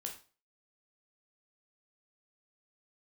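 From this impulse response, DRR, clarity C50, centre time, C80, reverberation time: 1.5 dB, 8.5 dB, 18 ms, 14.0 dB, 0.40 s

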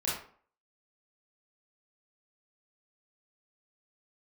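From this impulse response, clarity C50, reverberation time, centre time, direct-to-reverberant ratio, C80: 2.0 dB, 0.50 s, 49 ms, -7.5 dB, 7.5 dB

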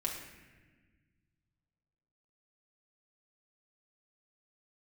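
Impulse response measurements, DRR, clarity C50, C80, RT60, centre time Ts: -2.5 dB, 4.0 dB, 6.0 dB, 1.4 s, 45 ms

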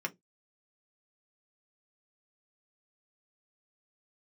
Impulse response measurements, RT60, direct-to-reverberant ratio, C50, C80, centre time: not exponential, 2.0 dB, 26.0 dB, 37.5 dB, 5 ms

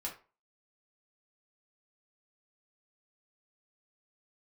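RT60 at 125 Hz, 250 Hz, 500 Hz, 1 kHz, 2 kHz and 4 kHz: 0.30, 0.30, 0.35, 0.35, 0.30, 0.25 s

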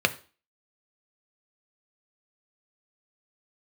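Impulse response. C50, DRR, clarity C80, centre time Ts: 18.0 dB, 7.5 dB, 22.5 dB, 4 ms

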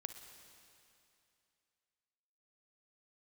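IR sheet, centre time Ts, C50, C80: 38 ms, 7.5 dB, 8.5 dB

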